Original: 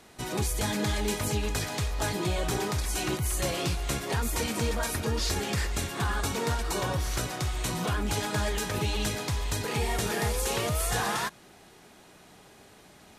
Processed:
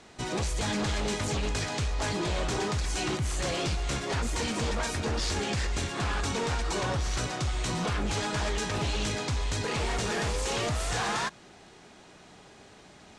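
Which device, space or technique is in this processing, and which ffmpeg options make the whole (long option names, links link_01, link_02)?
synthesiser wavefolder: -af "aeval=exprs='0.0531*(abs(mod(val(0)/0.0531+3,4)-2)-1)':channel_layout=same,lowpass=frequency=8000:width=0.5412,lowpass=frequency=8000:width=1.3066,volume=1.5dB"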